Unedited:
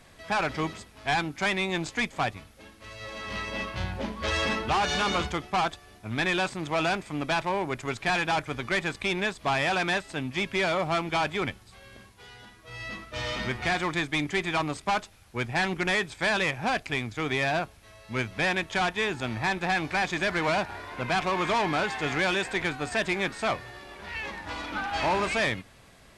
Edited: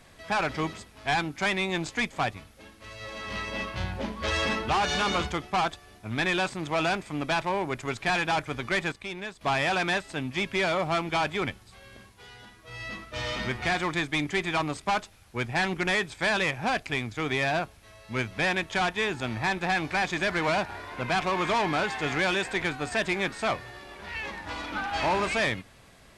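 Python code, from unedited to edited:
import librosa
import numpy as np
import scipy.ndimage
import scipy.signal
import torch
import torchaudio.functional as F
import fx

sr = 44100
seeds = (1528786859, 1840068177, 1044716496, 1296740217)

y = fx.edit(x, sr, fx.clip_gain(start_s=8.92, length_s=0.49, db=-8.5), tone=tone)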